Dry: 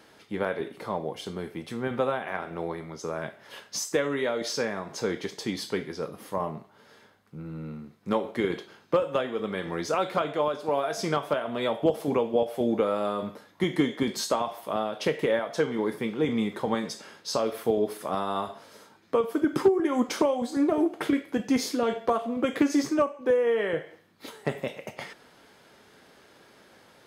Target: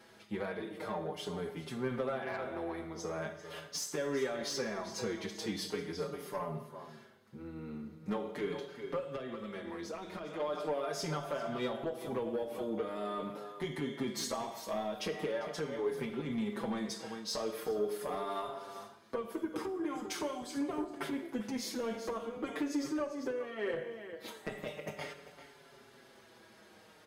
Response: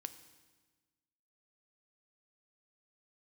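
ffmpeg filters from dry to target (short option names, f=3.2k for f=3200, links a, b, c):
-filter_complex "[0:a]asettb=1/sr,asplit=3[a][b][c];[a]atrim=end=19.954[d];[b]atrim=start=19.95:end=20.78,asetpts=PTS-STARTPTS,afade=t=in:d=0.004:c=qsin,afade=t=out:st=0.826:d=0.004:c=qsin,equalizer=f=470:w=0.62:g=-10.5[e];[c]atrim=start=20.776[f];[d][e]acrossfade=d=0.004:c1=hsin:c2=qsin[g];[g][f]acrossfade=d=0.004:c1=qsin:c2=hsin,aecho=1:1:396:0.188,acompressor=threshold=-27dB:ratio=6,asoftclip=type=tanh:threshold=-24.5dB[h];[1:a]atrim=start_sample=2205,asetrate=57330,aresample=44100[i];[h][i]afir=irnorm=-1:irlink=0,asettb=1/sr,asplit=3[j][k][l];[j]atrim=end=8.994[m];[k]atrim=start=8.99:end=10.4,asetpts=PTS-STARTPTS,afade=t=in:d=0.004:c=qsin,afade=t=out:st=1.406:d=0.004:c=qsin,acrossover=split=290|1200[n][o][p];[n]acompressor=threshold=-48dB:ratio=4[q];[o]acompressor=threshold=-46dB:ratio=4[r];[p]acompressor=threshold=-52dB:ratio=4[s];[q][r][s]amix=inputs=3:normalize=0[t];[l]atrim=start=10.396[u];[m][t]acrossfade=d=0.004:c1=hsin:c2=qsin[v];[v][u]acrossfade=d=0.004:c1=qsin:c2=hsin,asplit=2[w][x];[x]adelay=5.6,afreqshift=-0.42[y];[w][y]amix=inputs=2:normalize=1,volume=5.5dB"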